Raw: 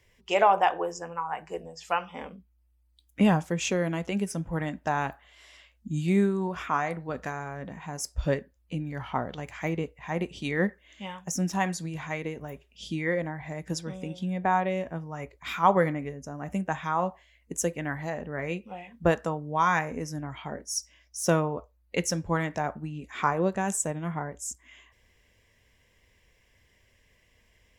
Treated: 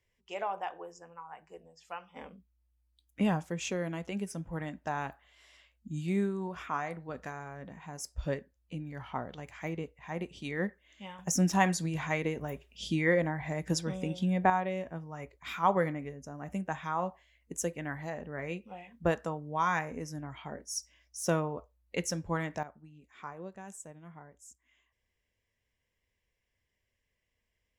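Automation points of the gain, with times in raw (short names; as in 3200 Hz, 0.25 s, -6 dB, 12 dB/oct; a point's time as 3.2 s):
-14.5 dB
from 2.16 s -7 dB
from 11.19 s +1.5 dB
from 14.5 s -5.5 dB
from 22.63 s -18 dB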